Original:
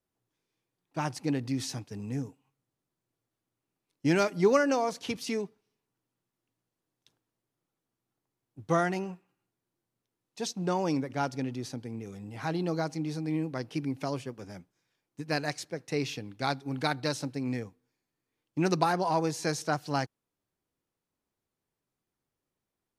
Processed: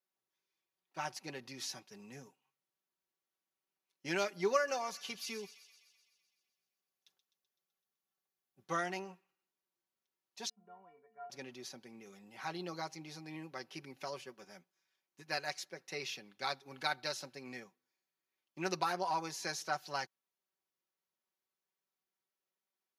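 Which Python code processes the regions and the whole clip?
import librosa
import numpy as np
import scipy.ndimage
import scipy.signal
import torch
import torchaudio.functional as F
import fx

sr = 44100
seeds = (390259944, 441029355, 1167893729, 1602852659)

y = fx.chain(x, sr, fx.high_shelf(hz=7800.0, db=5.0),
    fx.notch_comb(f0_hz=320.0),
    fx.echo_wet_highpass(ms=127, feedback_pct=64, hz=2600.0, wet_db=-11.5), at=(4.55, 8.64))
y = fx.chain(y, sr, fx.lowpass(hz=1700.0, slope=24),
    fx.stiff_resonator(f0_hz=210.0, decay_s=0.47, stiffness=0.03), at=(10.49, 11.3))
y = fx.highpass(y, sr, hz=1000.0, slope=6)
y = fx.peak_eq(y, sr, hz=8400.0, db=-11.5, octaves=0.22)
y = y + 0.65 * np.pad(y, (int(5.3 * sr / 1000.0), 0))[:len(y)]
y = y * 10.0 ** (-4.5 / 20.0)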